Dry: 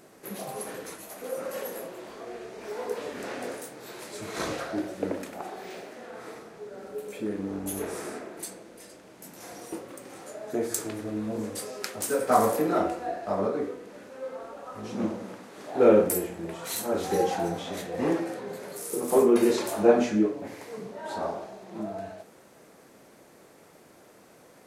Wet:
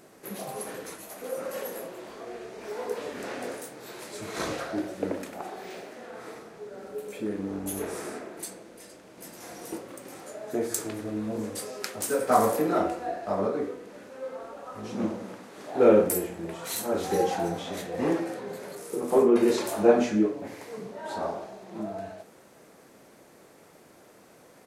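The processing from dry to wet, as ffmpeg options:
ffmpeg -i in.wav -filter_complex "[0:a]asplit=2[link_01][link_02];[link_02]afade=type=in:start_time=8.74:duration=0.01,afade=type=out:start_time=9.34:duration=0.01,aecho=0:1:430|860|1290|1720|2150|2580|3010|3440|3870:0.841395|0.504837|0.302902|0.181741|0.109045|0.0654269|0.0392561|0.0235537|0.0141322[link_03];[link_01][link_03]amix=inputs=2:normalize=0,asettb=1/sr,asplit=3[link_04][link_05][link_06];[link_04]atrim=end=18.754[link_07];[link_05]atrim=start=18.75:end=19.48,asetpts=PTS-STARTPTS,afade=type=in:duration=0.004:curve=qsin,afade=type=out:start_time=0.726:duration=0.004:curve=qsin,lowpass=frequency=3300:poles=1[link_08];[link_06]atrim=start=19.476[link_09];[link_07][link_08]acrossfade=duration=0.004:curve1=hsin:curve2=qsin[link_10];[link_10][link_09]acrossfade=duration=0.004:curve1=qsin:curve2=hsin" out.wav

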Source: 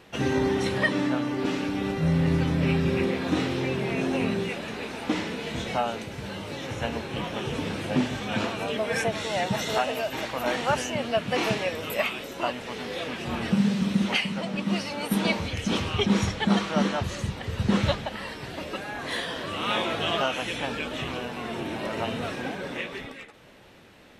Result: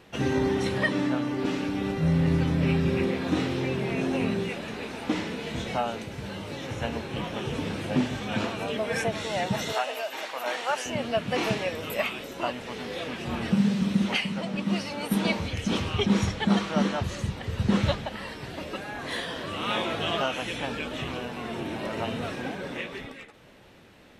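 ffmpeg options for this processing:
ffmpeg -i in.wav -filter_complex "[0:a]asettb=1/sr,asplit=3[link_01][link_02][link_03];[link_01]atrim=end=9.724[link_04];[link_02]atrim=start=9.72:end=10.86,asetpts=PTS-STARTPTS,afade=type=in:duration=0.004:curve=qsin,afade=type=out:start_time=1.136:duration=0.004:curve=qsin,highpass=550[link_05];[link_03]atrim=start=10.856[link_06];[link_04][link_05]acrossfade=duration=0.004:curve1=hsin:curve2=qsin[link_07];[link_07][link_06]acrossfade=duration=0.004:curve1=qsin:curve2=hsin,lowshelf=frequency=350:gain=2.5,volume=-2dB" out.wav

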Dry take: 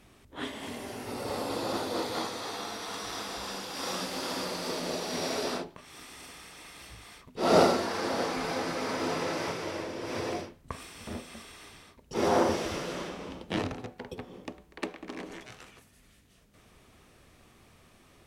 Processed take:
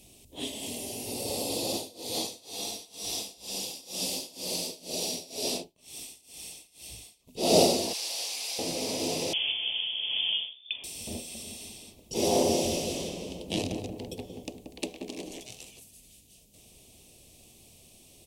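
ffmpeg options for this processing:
ffmpeg -i in.wav -filter_complex "[0:a]asettb=1/sr,asplit=3[link_01][link_02][link_03];[link_01]atrim=end=1.704[link_04];[link_02]atrim=start=1.7:end=7.29,asetpts=PTS-STARTPTS,afade=type=in:duration=0.004:curve=qsin,afade=type=out:start_time=5.586:duration=0.004:curve=qsin,tremolo=f=2.1:d=0.93[link_05];[link_03]atrim=start=7.286[link_06];[link_04][link_05]acrossfade=duration=0.004:curve1=hsin:curve2=qsin[link_07];[link_07][link_06]acrossfade=duration=0.004:curve1=qsin:curve2=hsin,asettb=1/sr,asplit=3[link_08][link_09][link_10];[link_08]atrim=end=7.934[link_11];[link_09]atrim=start=7.93:end=8.59,asetpts=PTS-STARTPTS,afade=type=in:duration=0.004:curve=qsin,afade=type=out:start_time=0.656:duration=0.004:curve=qsin,highpass=1400[link_12];[link_10]atrim=start=8.586[link_13];[link_11][link_12]acrossfade=duration=0.004:curve1=hsin:curve2=qsin[link_14];[link_14][link_13]acrossfade=duration=0.004:curve1=qsin:curve2=hsin,asettb=1/sr,asplit=3[link_15][link_16][link_17];[link_15]atrim=end=9.334[link_18];[link_16]atrim=start=9.33:end=10.84,asetpts=PTS-STARTPTS,afade=type=in:duration=0.004:curve=qsin,afade=type=out:start_time=1.506:duration=0.004:curve=qsin,lowpass=frequency=3100:width_type=q:width=0.5098,lowpass=frequency=3100:width_type=q:width=0.6013,lowpass=frequency=3100:width_type=q:width=0.9,lowpass=frequency=3100:width_type=q:width=2.563,afreqshift=-3600[link_19];[link_17]atrim=start=10.836[link_20];[link_18][link_19]acrossfade=duration=0.004:curve1=hsin:curve2=qsin[link_21];[link_21][link_20]acrossfade=duration=0.004:curve1=qsin:curve2=hsin,asplit=3[link_22][link_23][link_24];[link_22]afade=type=out:start_time=11.38:duration=0.02[link_25];[link_23]asplit=2[link_26][link_27];[link_27]adelay=180,lowpass=frequency=970:poles=1,volume=-4.5dB,asplit=2[link_28][link_29];[link_29]adelay=180,lowpass=frequency=970:poles=1,volume=0.52,asplit=2[link_30][link_31];[link_31]adelay=180,lowpass=frequency=970:poles=1,volume=0.52,asplit=2[link_32][link_33];[link_33]adelay=180,lowpass=frequency=970:poles=1,volume=0.52,asplit=2[link_34][link_35];[link_35]adelay=180,lowpass=frequency=970:poles=1,volume=0.52,asplit=2[link_36][link_37];[link_37]adelay=180,lowpass=frequency=970:poles=1,volume=0.52,asplit=2[link_38][link_39];[link_39]adelay=180,lowpass=frequency=970:poles=1,volume=0.52[link_40];[link_26][link_28][link_30][link_32][link_34][link_36][link_38][link_40]amix=inputs=8:normalize=0,afade=type=in:start_time=11.38:duration=0.02,afade=type=out:start_time=15.39:duration=0.02[link_41];[link_24]afade=type=in:start_time=15.39:duration=0.02[link_42];[link_25][link_41][link_42]amix=inputs=3:normalize=0,firequalizer=gain_entry='entry(680,0);entry(1400,-25);entry(2600,4);entry(8100,13)':delay=0.05:min_phase=1" out.wav

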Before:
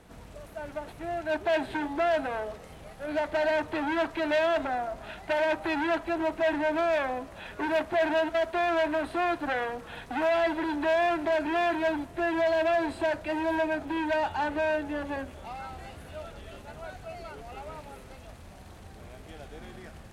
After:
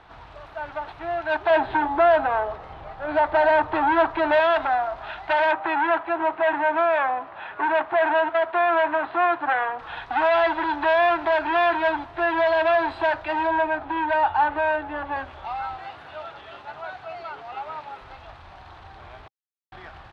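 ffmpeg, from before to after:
ffmpeg -i in.wav -filter_complex "[0:a]asettb=1/sr,asplit=3[link_01][link_02][link_03];[link_01]atrim=end=1.504[link_04];[link_02]atrim=start=1.5:end=4.4,asetpts=PTS-STARTPTS,afade=type=in:duration=0.004:curve=qsin,afade=type=out:start_time=2.896:duration=0.004:curve=qsin,tiltshelf=frequency=1500:gain=5.5[link_05];[link_03]atrim=start=4.396[link_06];[link_04][link_05]acrossfade=duration=0.004:curve1=hsin:curve2=qsin[link_07];[link_07][link_06]acrossfade=duration=0.004:curve1=qsin:curve2=hsin,asettb=1/sr,asplit=3[link_08][link_09][link_10];[link_08]atrim=end=5.514[link_11];[link_09]atrim=start=5.51:end=9.79,asetpts=PTS-STARTPTS,afade=type=in:duration=0.004:curve=qsin,afade=type=out:start_time=4.276:duration=0.004:curve=qsin,highpass=150,lowpass=2500[link_12];[link_10]atrim=start=9.786[link_13];[link_11][link_12]acrossfade=duration=0.004:curve1=hsin:curve2=qsin[link_14];[link_14][link_13]acrossfade=duration=0.004:curve1=qsin:curve2=hsin,asettb=1/sr,asplit=3[link_15][link_16][link_17];[link_15]atrim=end=13.474[link_18];[link_16]atrim=start=13.47:end=15.16,asetpts=PTS-STARTPTS,afade=type=in:duration=0.004:curve=qsin,afade=type=out:start_time=1.686:duration=0.004:curve=qsin,aemphasis=mode=reproduction:type=75kf[link_19];[link_17]atrim=start=15.156[link_20];[link_18][link_19]acrossfade=duration=0.004:curve1=hsin:curve2=qsin[link_21];[link_21][link_20]acrossfade=duration=0.004:curve1=qsin:curve2=hsin,asettb=1/sr,asplit=3[link_22][link_23][link_24];[link_22]atrim=end=15.764[link_25];[link_23]atrim=start=15.76:end=18.01,asetpts=PTS-STARTPTS,afade=type=in:duration=0.004:curve=qsin,afade=type=out:start_time=2.246:duration=0.004:curve=qsin,highpass=140[link_26];[link_24]atrim=start=18.006[link_27];[link_25][link_26]acrossfade=duration=0.004:curve1=hsin:curve2=qsin[link_28];[link_28][link_27]acrossfade=duration=0.004:curve1=qsin:curve2=hsin,asplit=3[link_29][link_30][link_31];[link_29]atrim=end=19.28,asetpts=PTS-STARTPTS,afade=type=out:start_time=19.276:duration=0.004:curve=hsin[link_32];[link_30]atrim=start=19.28:end=19.72,asetpts=PTS-STARTPTS,volume=0[link_33];[link_31]atrim=start=19.72,asetpts=PTS-STARTPTS,afade=type=in:duration=0.004:curve=hsin[link_34];[link_32][link_33][link_34]concat=n=3:v=0:a=1,firequalizer=gain_entry='entry(120,0);entry(210,-10);entry(330,0);entry(490,-3);entry(800,11);entry(1200,11);entry(2100,5);entry(3700,6);entry(6700,-12);entry(9600,-21)':delay=0.05:min_phase=1" out.wav

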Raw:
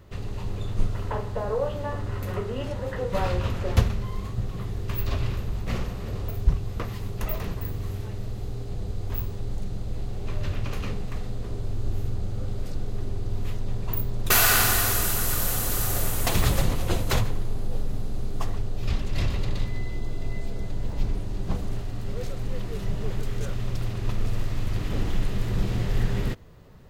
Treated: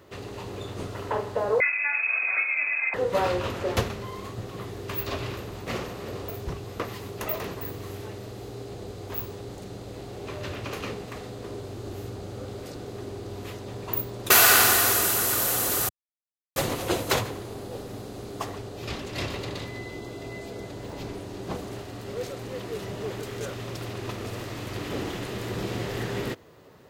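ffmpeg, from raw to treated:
ffmpeg -i in.wav -filter_complex "[0:a]asettb=1/sr,asplit=3[link_01][link_02][link_03];[link_01]atrim=end=1.604[link_04];[link_02]atrim=start=1.6:end=2.94,asetpts=PTS-STARTPTS,afade=type=in:duration=0.004:curve=qsin,afade=type=out:start_time=1.336:duration=0.004:curve=qsin,lowpass=frequency=2200:width_type=q:width=0.5098,lowpass=frequency=2200:width_type=q:width=0.6013,lowpass=frequency=2200:width_type=q:width=0.9,lowpass=frequency=2200:width_type=q:width=2.563,afreqshift=-2600[link_05];[link_03]atrim=start=2.936[link_06];[link_04][link_05]acrossfade=duration=0.004:curve1=hsin:curve2=qsin[link_07];[link_07][link_06]acrossfade=duration=0.004:curve1=qsin:curve2=hsin,asplit=3[link_08][link_09][link_10];[link_08]atrim=end=15.89,asetpts=PTS-STARTPTS,afade=type=out:start_time=15.886:duration=0.004:curve=hsin[link_11];[link_09]atrim=start=15.89:end=16.56,asetpts=PTS-STARTPTS,volume=0[link_12];[link_10]atrim=start=16.56,asetpts=PTS-STARTPTS,afade=type=in:duration=0.004:curve=hsin[link_13];[link_11][link_12][link_13]concat=n=3:v=0:a=1,highpass=110,lowshelf=frequency=250:width_type=q:width=1.5:gain=-6,volume=3dB" out.wav

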